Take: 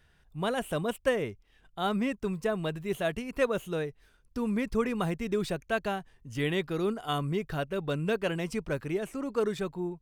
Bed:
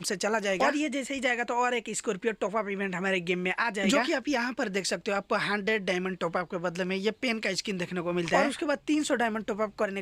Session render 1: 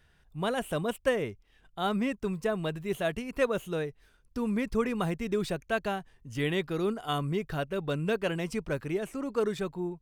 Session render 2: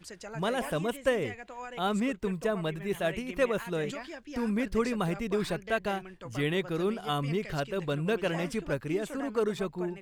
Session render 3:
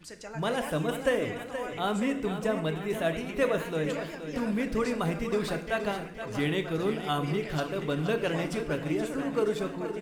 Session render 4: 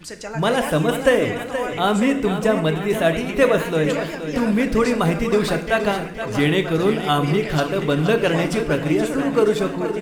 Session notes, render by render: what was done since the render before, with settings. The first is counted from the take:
nothing audible
add bed -15 dB
on a send: feedback echo 0.474 s, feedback 55%, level -10 dB; on the sum: FDN reverb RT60 0.66 s, low-frequency decay 1.25×, high-frequency decay 0.95×, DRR 7.5 dB
gain +10.5 dB

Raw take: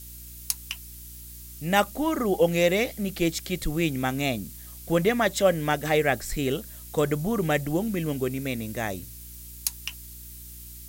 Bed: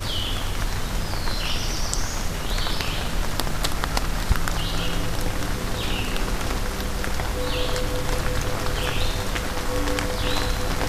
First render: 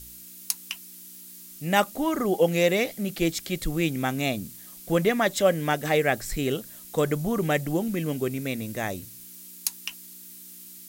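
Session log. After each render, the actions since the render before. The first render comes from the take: de-hum 60 Hz, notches 2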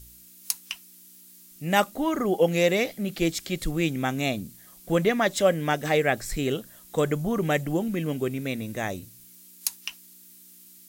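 noise print and reduce 6 dB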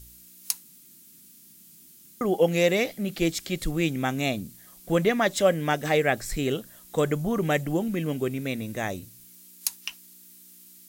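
0.63–2.21 room tone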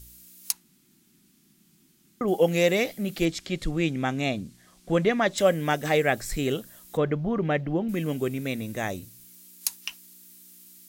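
0.52–2.28 LPF 2100 Hz 6 dB/oct; 3.25–5.38 air absorption 62 m; 6.97–7.89 air absorption 270 m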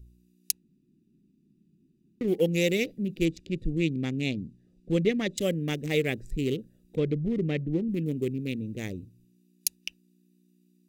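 Wiener smoothing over 41 samples; band shelf 1000 Hz -16 dB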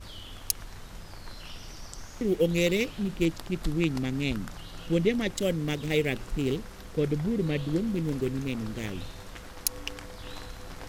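add bed -17.5 dB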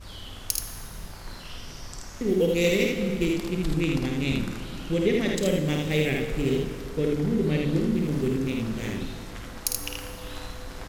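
on a send: early reflections 52 ms -5.5 dB, 79 ms -3.5 dB; on the sum: plate-style reverb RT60 2.8 s, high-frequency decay 0.65×, DRR 6.5 dB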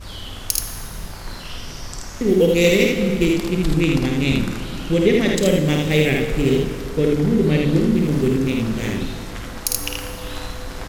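gain +7.5 dB; limiter -1 dBFS, peak gain reduction 3 dB

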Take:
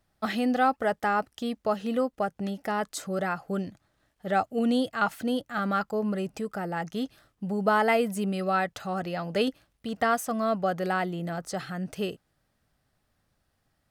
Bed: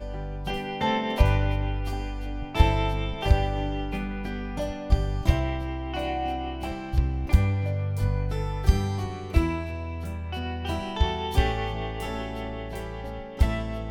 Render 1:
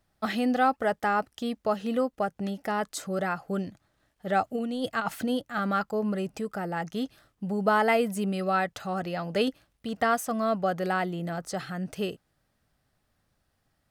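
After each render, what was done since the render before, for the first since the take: 4.45–5.3 negative-ratio compressor -29 dBFS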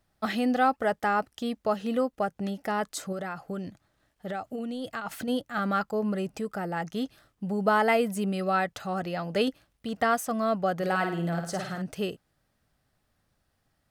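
3.12–5.28 compressor, threshold -30 dBFS; 10.74–11.82 flutter echo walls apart 9.1 m, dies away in 0.52 s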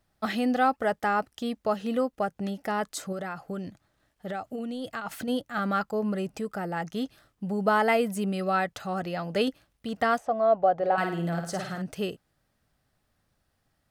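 10.18–10.98 EQ curve 120 Hz 0 dB, 190 Hz -10 dB, 280 Hz -5 dB, 720 Hz +8 dB, 1200 Hz -4 dB, 3800 Hz -10 dB, 9300 Hz -22 dB, 14000 Hz -29 dB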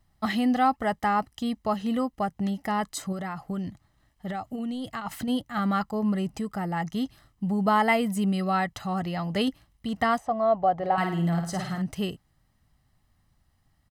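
low shelf 150 Hz +7 dB; comb 1 ms, depth 49%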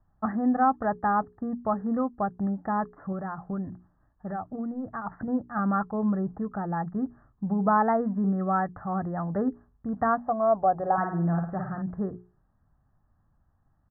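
steep low-pass 1700 Hz 96 dB/oct; notches 60/120/180/240/300/360/420 Hz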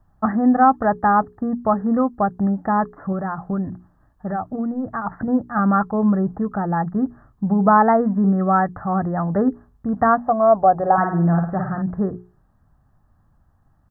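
gain +8.5 dB

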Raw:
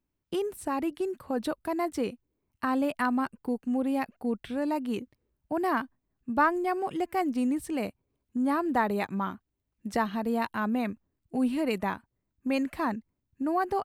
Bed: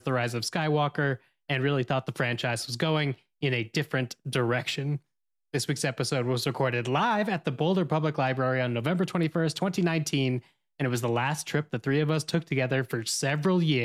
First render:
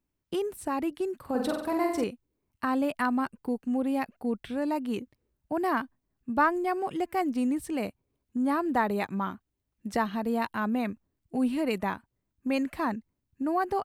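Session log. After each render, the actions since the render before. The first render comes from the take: 1.16–2.04 flutter echo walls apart 8 m, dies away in 0.7 s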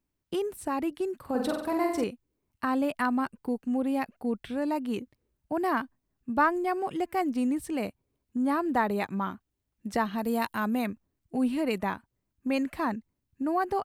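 10.18–10.86 high shelf 5600 Hz +11 dB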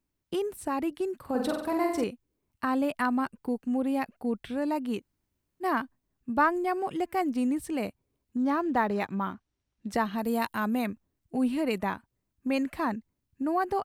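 4.99–5.63 room tone, crossfade 0.06 s; 8.37–9.89 decimation joined by straight lines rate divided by 3×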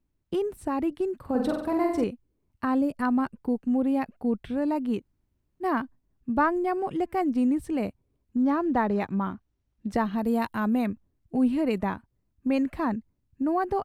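2.81–3.02 spectral gain 570–4300 Hz -10 dB; tilt -2 dB/oct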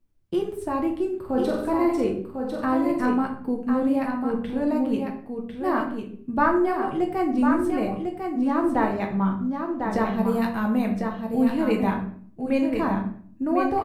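echo 1.049 s -5.5 dB; shoebox room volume 67 m³, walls mixed, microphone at 0.67 m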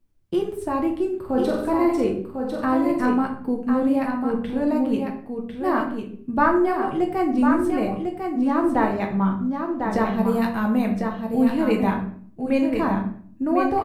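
gain +2 dB

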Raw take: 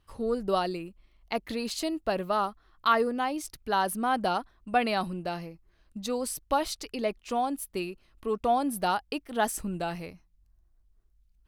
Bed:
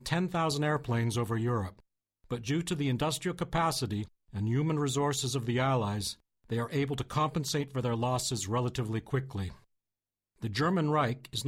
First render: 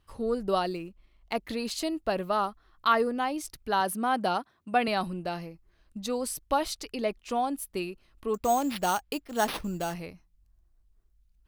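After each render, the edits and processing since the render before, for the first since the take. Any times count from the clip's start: 0.67–1.35 median filter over 5 samples; 3.8–4.88 HPF 99 Hz 24 dB/oct; 8.34–9.94 sample-rate reducer 7300 Hz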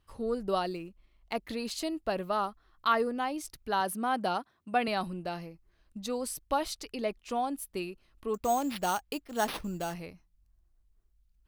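gain -3 dB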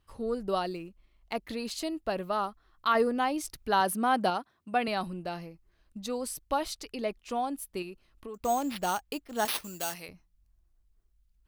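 2.95–4.3 gain +4 dB; 7.82–8.45 compressor, threshold -37 dBFS; 9.45–10.09 tilt +3.5 dB/oct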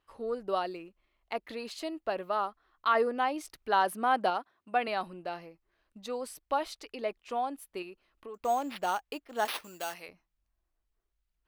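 tone controls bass -14 dB, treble -9 dB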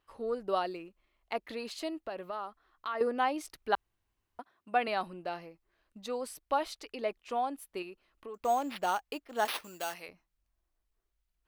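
2.07–3.01 compressor 2:1, threshold -40 dBFS; 3.75–4.39 room tone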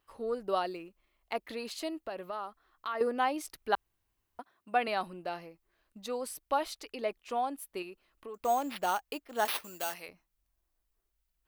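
high shelf 10000 Hz +8.5 dB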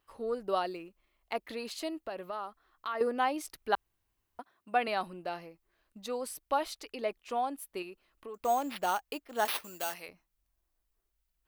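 nothing audible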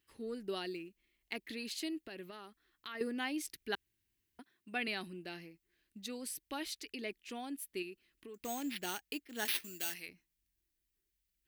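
HPF 88 Hz 6 dB/oct; band shelf 810 Hz -15.5 dB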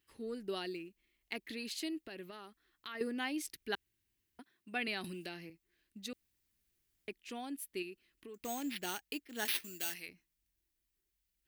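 5.04–5.5 three-band squash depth 100%; 6.13–7.08 room tone

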